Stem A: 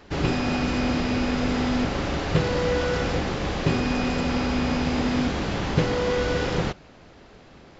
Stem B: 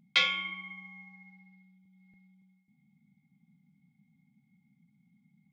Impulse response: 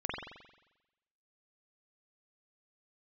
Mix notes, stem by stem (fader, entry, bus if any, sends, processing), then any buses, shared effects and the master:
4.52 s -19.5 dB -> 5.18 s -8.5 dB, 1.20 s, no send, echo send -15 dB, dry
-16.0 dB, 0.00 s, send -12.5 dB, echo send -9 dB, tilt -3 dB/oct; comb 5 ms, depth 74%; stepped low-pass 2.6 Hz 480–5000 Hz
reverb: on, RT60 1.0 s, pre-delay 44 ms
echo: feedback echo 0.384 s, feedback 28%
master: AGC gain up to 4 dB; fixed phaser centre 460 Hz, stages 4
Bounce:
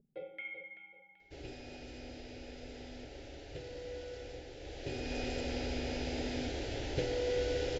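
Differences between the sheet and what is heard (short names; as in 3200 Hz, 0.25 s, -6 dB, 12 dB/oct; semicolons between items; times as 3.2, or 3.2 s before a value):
stem B -16.0 dB -> -8.0 dB; master: missing AGC gain up to 4 dB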